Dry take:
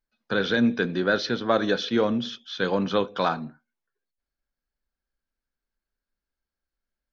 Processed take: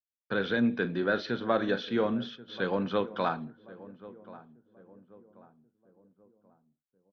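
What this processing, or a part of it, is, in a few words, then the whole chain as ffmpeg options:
hearing-loss simulation: -filter_complex "[0:a]lowpass=3.2k,agate=range=-33dB:threshold=-43dB:ratio=3:detection=peak,asplit=3[a][b][c];[a]afade=t=out:st=0.72:d=0.02[d];[b]asplit=2[e][f];[f]adelay=41,volume=-13dB[g];[e][g]amix=inputs=2:normalize=0,afade=t=in:st=0.72:d=0.02,afade=t=out:st=2.26:d=0.02[h];[c]afade=t=in:st=2.26:d=0.02[i];[d][h][i]amix=inputs=3:normalize=0,asplit=2[j][k];[k]adelay=1084,lowpass=f=970:p=1,volume=-17dB,asplit=2[l][m];[m]adelay=1084,lowpass=f=970:p=1,volume=0.45,asplit=2[n][o];[o]adelay=1084,lowpass=f=970:p=1,volume=0.45,asplit=2[p][q];[q]adelay=1084,lowpass=f=970:p=1,volume=0.45[r];[j][l][n][p][r]amix=inputs=5:normalize=0,volume=-5dB"

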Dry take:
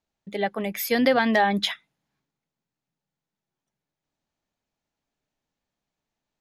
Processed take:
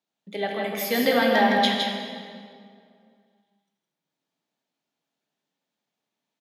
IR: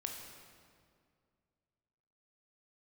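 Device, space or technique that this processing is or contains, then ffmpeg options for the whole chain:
PA in a hall: -filter_complex "[0:a]highpass=f=160:w=0.5412,highpass=f=160:w=1.3066,equalizer=f=3.5k:t=o:w=0.6:g=4.5,aecho=1:1:162:0.631[a];[1:a]atrim=start_sample=2205[b];[a][b]afir=irnorm=-1:irlink=0"

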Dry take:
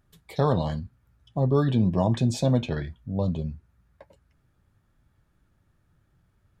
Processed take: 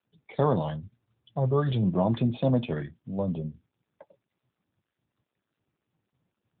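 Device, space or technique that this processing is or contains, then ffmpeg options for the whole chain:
mobile call with aggressive noise cancelling: -filter_complex "[0:a]asplit=3[a][b][c];[a]afade=t=out:st=0.59:d=0.02[d];[b]equalizer=f=100:t=o:w=0.67:g=6,equalizer=f=250:t=o:w=0.67:g=-11,equalizer=f=4k:t=o:w=0.67:g=7,afade=t=in:st=0.59:d=0.02,afade=t=out:st=1.81:d=0.02[e];[c]afade=t=in:st=1.81:d=0.02[f];[d][e][f]amix=inputs=3:normalize=0,highpass=130,afftdn=nr=28:nf=-51" -ar 8000 -c:a libopencore_amrnb -b:a 10200

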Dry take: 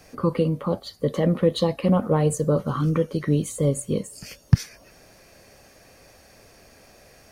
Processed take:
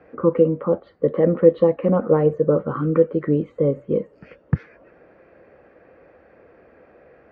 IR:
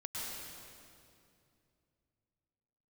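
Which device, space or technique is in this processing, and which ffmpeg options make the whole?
bass cabinet: -af "highpass=70,equalizer=f=110:t=q:w=4:g=-8,equalizer=f=330:t=q:w=4:g=7,equalizer=f=490:t=q:w=4:g=9,equalizer=f=1.4k:t=q:w=4:g=4,lowpass=f=2.1k:w=0.5412,lowpass=f=2.1k:w=1.3066,volume=-1dB"

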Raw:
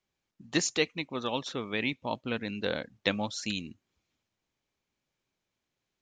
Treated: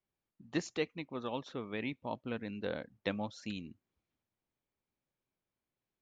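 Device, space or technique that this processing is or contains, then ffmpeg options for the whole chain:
through cloth: -af "lowpass=8k,highshelf=f=2.6k:g=-12,volume=-5dB"

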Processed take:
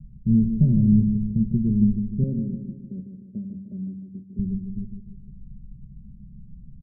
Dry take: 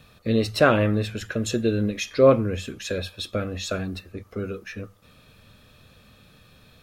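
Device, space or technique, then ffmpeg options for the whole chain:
the neighbour's flat through the wall: -filter_complex "[0:a]asettb=1/sr,asplit=3[a][b][c];[a]atrim=end=2.234[d];[b]atrim=start=2.23:end=4.39,asetpts=PTS-STARTPTS,afade=t=in:d=0.004:c=qsin,afade=t=out:st=2.156:d=0.004:c=qsin,highpass=280[e];[c]atrim=start=4.386[f];[d][e]acrossfade=d=0.004:c1=hsin:c2=qsin[g];[g][f]acrossfade=d=0.004:c1=qsin:c2=hsin,lowpass=f=220:w=0.5412,lowpass=f=220:w=1.3066,aemphasis=mode=reproduction:type=riaa,equalizer=f=130:t=o:w=0.77:g=4,aecho=1:1:5.1:0.8,asplit=2[h][i];[i]adelay=152,lowpass=f=2k:p=1,volume=-7.5dB,asplit=2[j][k];[k]adelay=152,lowpass=f=2k:p=1,volume=0.53,asplit=2[l][m];[m]adelay=152,lowpass=f=2k:p=1,volume=0.53,asplit=2[n][o];[o]adelay=152,lowpass=f=2k:p=1,volume=0.53,asplit=2[p][q];[q]adelay=152,lowpass=f=2k:p=1,volume=0.53,asplit=2[r][s];[s]adelay=152,lowpass=f=2k:p=1,volume=0.53[t];[h][j][l][n][p][r][t]amix=inputs=7:normalize=0,volume=-3.5dB"

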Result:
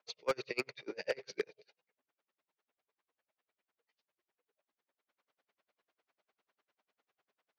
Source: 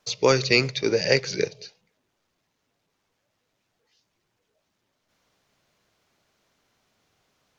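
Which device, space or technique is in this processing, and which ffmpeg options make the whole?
helicopter radio: -af "highpass=390,lowpass=2.9k,aeval=exprs='val(0)*pow(10,-38*(0.5-0.5*cos(2*PI*10*n/s))/20)':c=same,asoftclip=type=hard:threshold=-20.5dB,volume=-4dB"

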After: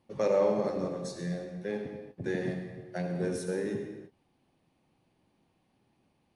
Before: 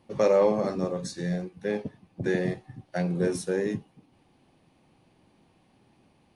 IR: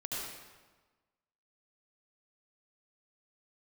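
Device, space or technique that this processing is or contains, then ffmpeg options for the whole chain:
keyed gated reverb: -filter_complex "[0:a]asplit=3[a][b][c];[1:a]atrim=start_sample=2205[d];[b][d]afir=irnorm=-1:irlink=0[e];[c]apad=whole_len=280329[f];[e][f]sidechaingate=range=-33dB:threshold=-57dB:ratio=16:detection=peak,volume=-4dB[g];[a][g]amix=inputs=2:normalize=0,volume=-9dB"

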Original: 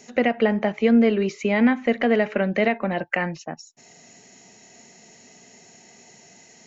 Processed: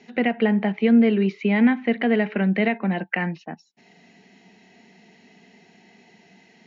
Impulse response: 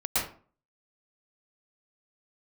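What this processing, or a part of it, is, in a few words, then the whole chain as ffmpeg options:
guitar cabinet: -af "highpass=100,equalizer=f=130:t=q:w=4:g=-10,equalizer=f=190:t=q:w=4:g=7,equalizer=f=570:t=q:w=4:g=-9,equalizer=f=1.2k:t=q:w=4:g=-6,lowpass=f=3.9k:w=0.5412,lowpass=f=3.9k:w=1.3066"

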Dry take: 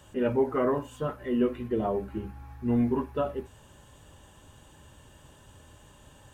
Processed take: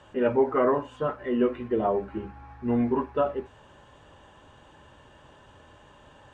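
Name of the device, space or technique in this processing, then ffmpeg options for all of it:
through cloth: -af "lowpass=6.4k,lowshelf=f=300:g=-12,highshelf=f=3.7k:g=-16,volume=7.5dB"

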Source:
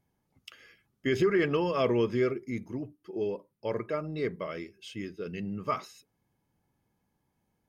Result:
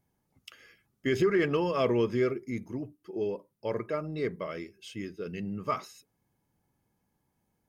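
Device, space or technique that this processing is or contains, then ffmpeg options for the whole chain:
exciter from parts: -filter_complex "[0:a]asplit=2[a][b];[b]highpass=f=3.2k:p=1,asoftclip=type=tanh:threshold=-38.5dB,highpass=3.6k,volume=-7dB[c];[a][c]amix=inputs=2:normalize=0"

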